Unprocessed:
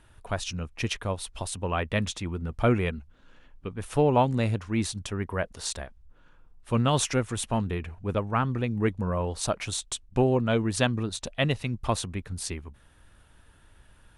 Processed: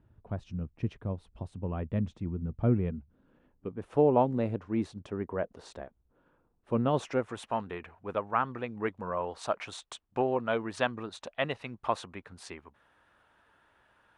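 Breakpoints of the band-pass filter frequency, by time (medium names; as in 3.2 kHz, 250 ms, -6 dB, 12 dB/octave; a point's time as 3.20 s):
band-pass filter, Q 0.76
2.76 s 160 Hz
3.91 s 410 Hz
6.89 s 410 Hz
7.52 s 1 kHz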